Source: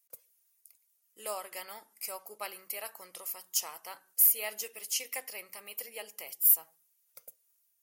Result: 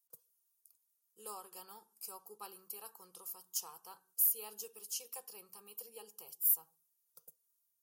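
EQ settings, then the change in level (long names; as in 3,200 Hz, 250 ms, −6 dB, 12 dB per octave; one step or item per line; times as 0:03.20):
low-shelf EQ 360 Hz +7.5 dB
phaser with its sweep stopped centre 410 Hz, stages 8
−7.0 dB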